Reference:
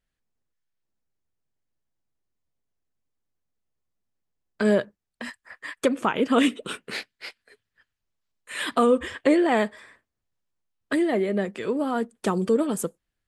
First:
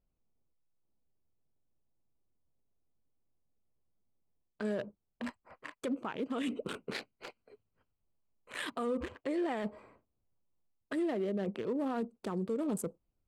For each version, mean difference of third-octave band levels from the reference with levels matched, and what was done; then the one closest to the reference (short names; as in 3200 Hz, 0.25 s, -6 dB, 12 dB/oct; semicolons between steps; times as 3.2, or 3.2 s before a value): 4.5 dB: Wiener smoothing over 25 samples; reverse; compressor 5:1, threshold -32 dBFS, peak gain reduction 15.5 dB; reverse; limiter -29.5 dBFS, peak gain reduction 8.5 dB; gain +2.5 dB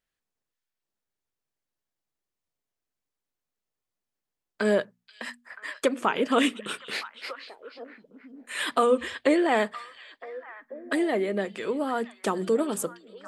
3.0 dB: low shelf 210 Hz -10.5 dB; notches 60/120/180/240 Hz; delay with a stepping band-pass 0.483 s, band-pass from 3700 Hz, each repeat -1.4 oct, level -10.5 dB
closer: second